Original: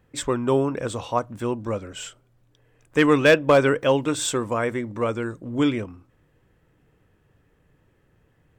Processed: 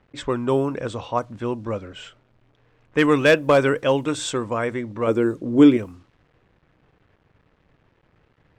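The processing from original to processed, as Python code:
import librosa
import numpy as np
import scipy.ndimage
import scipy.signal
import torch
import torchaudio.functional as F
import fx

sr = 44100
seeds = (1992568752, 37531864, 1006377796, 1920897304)

y = fx.peak_eq(x, sr, hz=350.0, db=10.5, octaves=1.6, at=(5.07, 5.77))
y = fx.quant_dither(y, sr, seeds[0], bits=10, dither='none')
y = fx.env_lowpass(y, sr, base_hz=2600.0, full_db=-16.0)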